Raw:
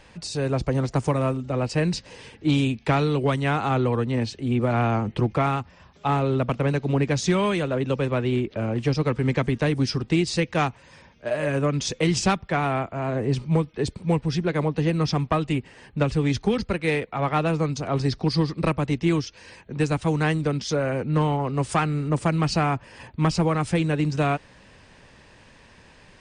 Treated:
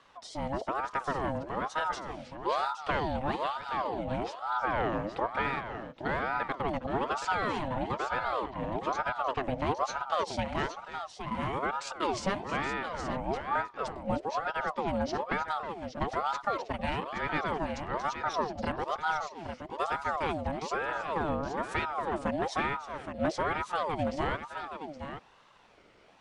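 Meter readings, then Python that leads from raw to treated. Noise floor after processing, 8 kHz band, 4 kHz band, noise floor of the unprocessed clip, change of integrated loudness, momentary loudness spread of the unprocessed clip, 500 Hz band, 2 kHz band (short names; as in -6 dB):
-55 dBFS, -12.5 dB, -9.0 dB, -52 dBFS, -8.5 dB, 5 LU, -8.5 dB, -3.5 dB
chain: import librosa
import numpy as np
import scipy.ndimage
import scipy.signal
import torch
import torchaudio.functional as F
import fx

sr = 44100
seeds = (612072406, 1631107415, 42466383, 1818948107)

y = fx.spec_repair(x, sr, seeds[0], start_s=3.49, length_s=0.54, low_hz=280.0, high_hz=1700.0, source='after')
y = fx.high_shelf(y, sr, hz=7300.0, db=-12.0)
y = fx.wow_flutter(y, sr, seeds[1], rate_hz=2.1, depth_cents=37.0)
y = fx.echo_multitap(y, sr, ms=(317, 820), db=(-14.0, -8.5))
y = fx.ring_lfo(y, sr, carrier_hz=750.0, swing_pct=50, hz=1.1)
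y = F.gain(torch.from_numpy(y), -6.5).numpy()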